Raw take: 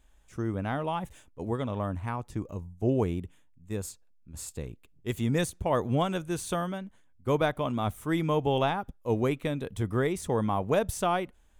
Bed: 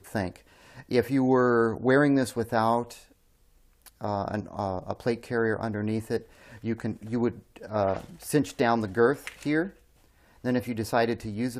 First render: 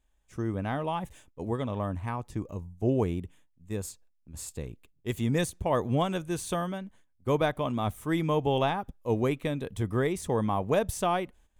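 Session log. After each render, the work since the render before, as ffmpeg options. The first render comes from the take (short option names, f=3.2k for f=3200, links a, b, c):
-af "agate=range=-10dB:threshold=-56dB:ratio=16:detection=peak,bandreject=f=1.4k:w=14"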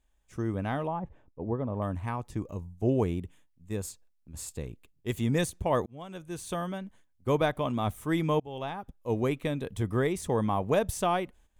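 -filter_complex "[0:a]asettb=1/sr,asplit=3[a][b][c];[a]atrim=end=0.874[d];[b]atrim=start=0.87:end=1.82,asetpts=PTS-STARTPTS,afade=t=in:d=0.004:c=qsin,afade=t=out:st=0.946:d=0.004:c=qsin,lowpass=1k[e];[c]atrim=start=1.816[f];[d][e]acrossfade=d=0.004:c1=hsin:c2=qsin[g];[g][f]acrossfade=d=0.004:c1=qsin:c2=hsin,asplit=3[h][i][j];[h]atrim=end=5.86,asetpts=PTS-STARTPTS,afade=t=out:st=5.856:d=0.004:c=hsin[k];[i]atrim=start=5.86:end=8.4,asetpts=PTS-STARTPTS,afade=t=in:d=0.97,afade=t=out:st=2.536:d=0.004:c=hsin:silence=0.0749894[l];[j]atrim=start=8.4,asetpts=PTS-STARTPTS,afade=t=in:d=1.27:c=qsin:silence=0.0749894[m];[k][l][m]concat=n=3:v=0:a=1"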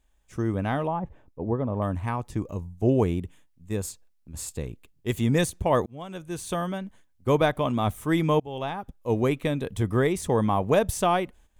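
-af "volume=4.5dB"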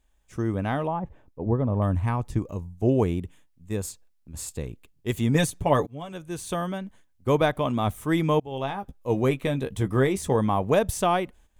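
-filter_complex "[0:a]asettb=1/sr,asplit=3[a][b][c];[a]atrim=end=1.464[d];[b]atrim=start=1.46:end=2.39,asetpts=PTS-STARTPTS,afade=t=in:d=0.004:c=qsin,afade=t=out:st=0.926:d=0.004:c=qsin,lowshelf=f=150:g=8.5[e];[c]atrim=start=2.386[f];[d][e]acrossfade=d=0.004:c1=hsin:c2=qsin[g];[g][f]acrossfade=d=0.004:c1=qsin:c2=hsin,asettb=1/sr,asplit=3[h][i][j];[h]atrim=end=5.344[k];[i]atrim=start=5.34:end=6.13,asetpts=PTS-STARTPTS,afade=t=in:d=0.004:c=qsin,afade=t=out:st=0.786:d=0.004:c=qsin,aecho=1:1:7:0.59,atrim=end_sample=34839[l];[j]atrim=start=6.126[m];[k][l]acrossfade=d=0.004:c1=hsin:c2=qsin[n];[n][m]acrossfade=d=0.004:c1=qsin:c2=hsin,asettb=1/sr,asplit=3[o][p][q];[o]atrim=end=8.504[r];[p]atrim=start=8.5:end=10.36,asetpts=PTS-STARTPTS,afade=t=in:d=0.004:c=qsin,afade=t=out:st=1.856:d=0.004:c=qsin,asplit=2[s][t];[t]adelay=15,volume=-8.5dB[u];[s][u]amix=inputs=2:normalize=0,atrim=end_sample=82026[v];[q]atrim=start=10.356[w];[r][v]acrossfade=d=0.004:c1=hsin:c2=qsin[x];[x][w]acrossfade=d=0.004:c1=qsin:c2=hsin"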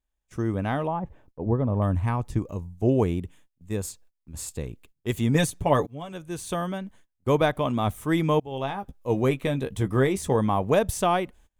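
-af "agate=range=-15dB:threshold=-53dB:ratio=16:detection=peak"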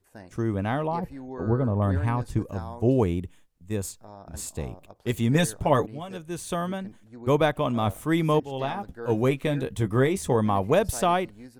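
-filter_complex "[1:a]volume=-16dB[a];[0:a][a]amix=inputs=2:normalize=0"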